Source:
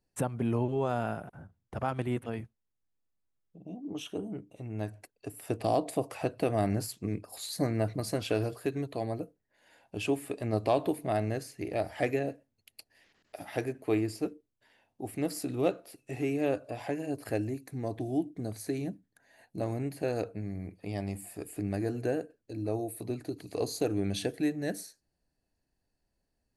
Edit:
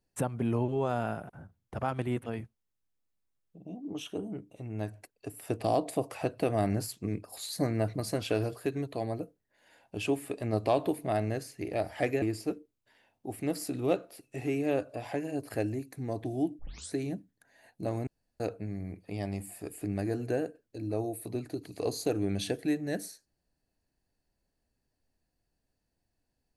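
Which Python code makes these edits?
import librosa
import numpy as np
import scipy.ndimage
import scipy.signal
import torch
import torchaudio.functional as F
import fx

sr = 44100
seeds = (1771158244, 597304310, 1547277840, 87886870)

y = fx.edit(x, sr, fx.cut(start_s=12.22, length_s=1.75),
    fx.tape_start(start_s=18.34, length_s=0.34),
    fx.room_tone_fill(start_s=19.82, length_s=0.33), tone=tone)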